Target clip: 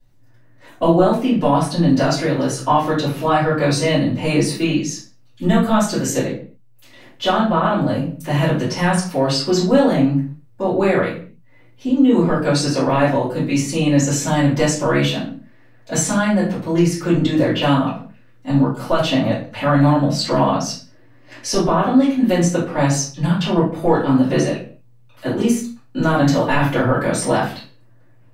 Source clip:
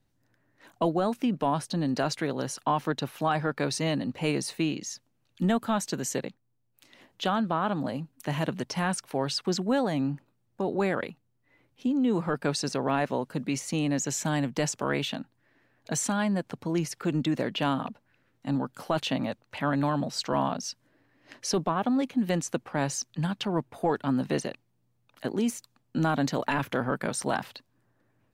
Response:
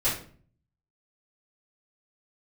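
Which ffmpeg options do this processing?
-filter_complex "[1:a]atrim=start_sample=2205,afade=t=out:st=0.34:d=0.01,atrim=end_sample=15435[a];[0:a][a]afir=irnorm=-1:irlink=0"

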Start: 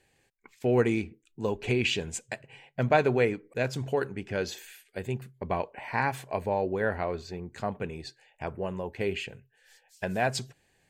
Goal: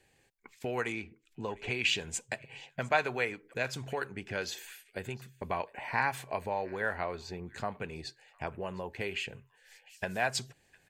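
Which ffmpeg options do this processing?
-filter_complex "[0:a]asettb=1/sr,asplit=3[a][b][c];[a]atrim=end=0.924[d];[b]atrim=start=0.92:end=1.72,asetpts=PTS-STARTPTS,afade=t=in:d=0.004:c=qsin,afade=t=out:st=0.796:d=0.004:c=qsin,lowpass=f=2.9k:p=1[e];[c]atrim=start=1.716[f];[d][e]acrossfade=d=0.004:c1=hsin:c2=qsin[g];[g][f]acrossfade=d=0.004:c1=qsin:c2=hsin,acrossover=split=760|1000[h][i][j];[h]acompressor=threshold=-38dB:ratio=6[k];[j]aecho=1:1:705:0.0794[l];[k][i][l]amix=inputs=3:normalize=0"

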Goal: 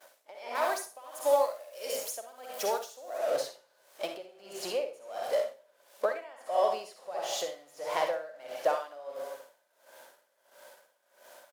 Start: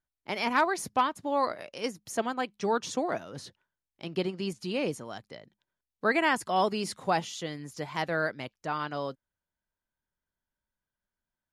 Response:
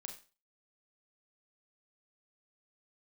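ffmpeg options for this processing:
-filter_complex "[0:a]aeval=exprs='val(0)+0.5*0.0158*sgn(val(0))':c=same,agate=range=-33dB:threshold=-35dB:ratio=3:detection=peak,asettb=1/sr,asplit=3[a][b][c];[a]atrim=end=0.554[d];[b]atrim=start=0.55:end=3.18,asetpts=PTS-STARTPTS,afade=t=in:d=0.004:c=qsin,afade=t=out:st=2.626:d=0.004:c=qsin,aemphasis=mode=production:type=75kf[e];[c]atrim=start=3.176[f];[d][e]acrossfade=d=0.004:c1=hsin:c2=qsin[g];[g][f]acrossfade=d=0.004:c1=qsin:c2=hsin,acompressor=threshold=-35dB:ratio=6,highpass=f=570:t=q:w=5.2,asplit=2[h][i];[i]adelay=239.1,volume=-18dB,highshelf=f=4k:g=-5.38[j];[h][j]amix=inputs=2:normalize=0[k];[1:a]atrim=start_sample=2205,asetrate=29547,aresample=44100[l];[k][l]afir=irnorm=-1:irlink=0,aeval=exprs='val(0)*pow(10,-22*(0.5-0.5*cos(2*PI*1.5*n/s))/20)':c=same,volume=7.5dB"

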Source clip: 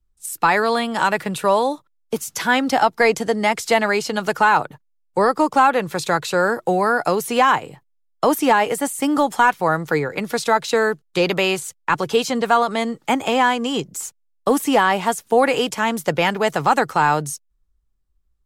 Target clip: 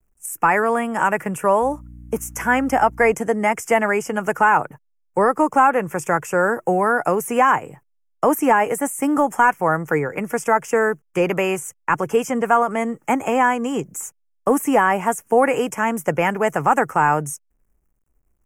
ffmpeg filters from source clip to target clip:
-filter_complex "[0:a]asettb=1/sr,asplit=3[a][b][c];[a]atrim=end=1.624[d];[b]atrim=start=1.62:end=3.13,asetpts=PTS-STARTPTS,afade=t=in:d=0.004:c=qsin,afade=t=out:st=1.506:d=0.004:c=qsin,aeval=exprs='val(0)+0.0126*(sin(2*PI*60*n/s)+sin(2*PI*2*60*n/s)/2+sin(2*PI*3*60*n/s)/3+sin(2*PI*4*60*n/s)/4+sin(2*PI*5*60*n/s)/5)':c=same[e];[c]atrim=start=3.126[f];[d][e]acrossfade=d=0.004:c1=hsin:c2=qsin[g];[g][f]acrossfade=d=0.004:c1=qsin:c2=hsin,acrusher=bits=11:mix=0:aa=0.000001,asuperstop=centerf=4000:order=4:qfactor=0.98"

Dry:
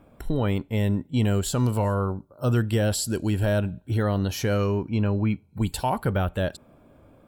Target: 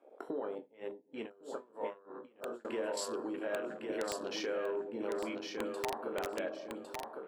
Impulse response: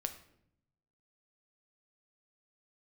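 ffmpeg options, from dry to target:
-filter_complex "[0:a]alimiter=limit=-18.5dB:level=0:latency=1:release=95,highpass=f=340:w=0.5412,highpass=f=340:w=1.3066,highshelf=f=3.2k:g=-2,asplit=2[a][b];[b]adelay=22,volume=-8dB[c];[a][c]amix=inputs=2:normalize=0[d];[1:a]atrim=start_sample=2205,asetrate=39690,aresample=44100[e];[d][e]afir=irnorm=-1:irlink=0,acompressor=threshold=-40dB:ratio=4,afwtdn=0.00398,lowpass=9.1k,aeval=exprs='(mod(31.6*val(0)+1,2)-1)/31.6':c=same,aecho=1:1:1106|2212|3318:0.596|0.149|0.0372,asettb=1/sr,asplit=3[f][g][h];[f]atrim=end=0.564[i];[g]atrim=start=0.56:end=2.65,asetpts=PTS-STARTPTS,afade=t=in:d=0.004:c=qsin,afade=t=out:st=2.086:d=0.004:c=qsin,aeval=exprs='val(0)*pow(10,-26*(0.5-0.5*cos(2*PI*3.1*n/s))/20)':c=same[j];[h]atrim=start=2.646[k];[i][j]acrossfade=d=0.004:c1=hsin:c2=qsin[l];[l][k]acrossfade=d=0.004:c1=qsin:c2=hsin,volume=3dB"

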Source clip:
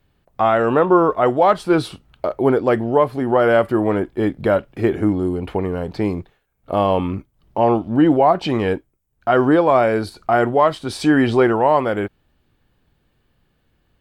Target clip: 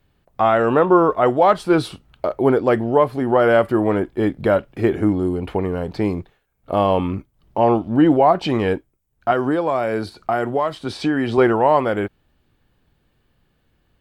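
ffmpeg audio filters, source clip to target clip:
-filter_complex "[0:a]asettb=1/sr,asplit=3[a][b][c];[a]atrim=end=9.314[d];[b]atrim=start=9.31:end=11.38,asetpts=PTS-STARTPTS,afade=t=in:d=0.004:c=qsin,afade=t=out:st=2.066:d=0.004:c=qsin,acrossover=split=82|5300[e][f][g];[e]acompressor=threshold=-55dB:ratio=4[h];[f]acompressor=threshold=-17dB:ratio=4[i];[g]acompressor=threshold=-50dB:ratio=4[j];[h][i][j]amix=inputs=3:normalize=0[k];[c]atrim=start=11.376[l];[d][k]acrossfade=d=0.004:c1=hsin:c2=qsin[m];[m][l]acrossfade=d=0.004:c1=qsin:c2=hsin"

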